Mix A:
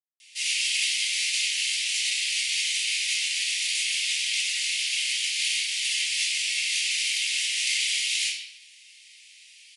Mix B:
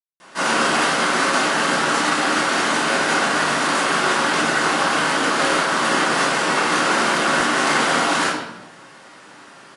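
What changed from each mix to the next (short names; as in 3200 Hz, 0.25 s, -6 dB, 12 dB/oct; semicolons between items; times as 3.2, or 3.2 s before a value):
master: remove steep high-pass 2200 Hz 72 dB/oct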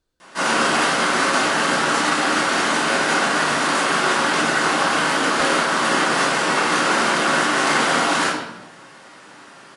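speech: entry -2.00 s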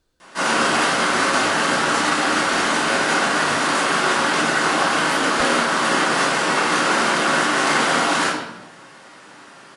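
speech +6.5 dB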